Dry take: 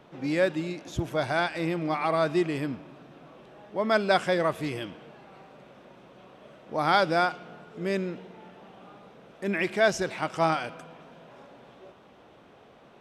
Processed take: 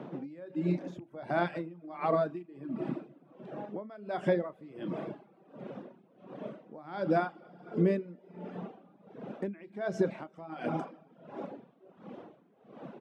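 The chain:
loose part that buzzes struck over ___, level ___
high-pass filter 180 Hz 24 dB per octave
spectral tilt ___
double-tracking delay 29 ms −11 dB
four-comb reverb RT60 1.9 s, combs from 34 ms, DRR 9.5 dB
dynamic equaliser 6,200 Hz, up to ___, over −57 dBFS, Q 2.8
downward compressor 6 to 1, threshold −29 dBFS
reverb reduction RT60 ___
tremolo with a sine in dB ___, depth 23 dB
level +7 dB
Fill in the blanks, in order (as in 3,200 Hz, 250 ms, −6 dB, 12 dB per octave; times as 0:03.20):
−27 dBFS, −20 dBFS, −4.5 dB per octave, −3 dB, 0.98 s, 1.4 Hz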